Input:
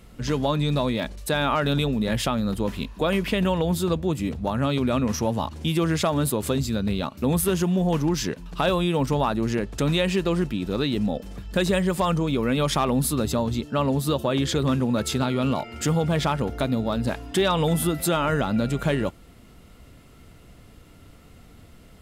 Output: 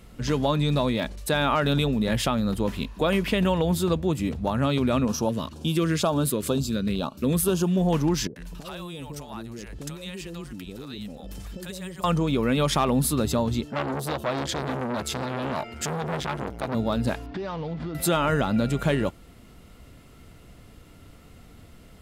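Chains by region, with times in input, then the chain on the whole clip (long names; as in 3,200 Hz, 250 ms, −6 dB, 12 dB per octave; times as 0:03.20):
0:05.05–0:07.77: parametric band 88 Hz −8.5 dB 0.63 octaves + auto-filter notch square 2.1 Hz 810–2,000 Hz
0:08.27–0:12.04: high-shelf EQ 5,000 Hz +10 dB + downward compressor 8 to 1, threshold −33 dBFS + multiband delay without the direct sound lows, highs 90 ms, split 590 Hz
0:13.71–0:16.75: parametric band 640 Hz +3 dB 0.29 octaves + saturating transformer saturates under 1,700 Hz
0:17.26–0:17.95: running median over 15 samples + low-pass filter 4,700 Hz 24 dB per octave + downward compressor 12 to 1, threshold −28 dBFS
whole clip: no processing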